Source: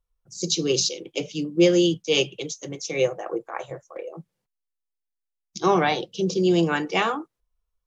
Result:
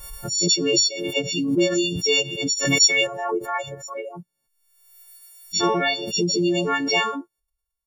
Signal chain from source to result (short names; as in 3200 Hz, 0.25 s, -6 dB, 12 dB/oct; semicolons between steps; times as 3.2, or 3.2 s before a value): frequency quantiser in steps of 4 st; dynamic EQ 400 Hz, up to +3 dB, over -32 dBFS, Q 0.84; reverb removal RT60 1.7 s; compressor 2.5:1, threshold -22 dBFS, peak gain reduction 9 dB; 2.65–3.07 tilt shelf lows -8.5 dB, about 940 Hz; backwards sustainer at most 47 dB/s; gain +2 dB